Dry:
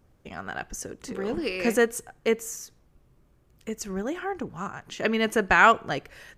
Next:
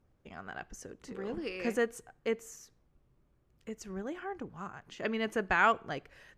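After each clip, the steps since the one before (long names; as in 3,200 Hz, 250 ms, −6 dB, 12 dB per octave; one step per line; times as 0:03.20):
high-shelf EQ 6,700 Hz −9.5 dB
level −8.5 dB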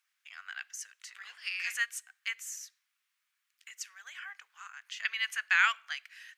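inverse Chebyshev high-pass filter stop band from 290 Hz, stop band 80 dB
level +8.5 dB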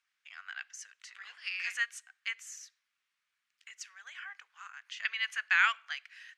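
high-frequency loss of the air 62 metres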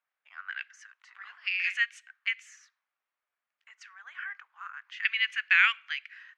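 envelope filter 640–2,400 Hz, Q 2, up, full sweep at −38.5 dBFS
level +8 dB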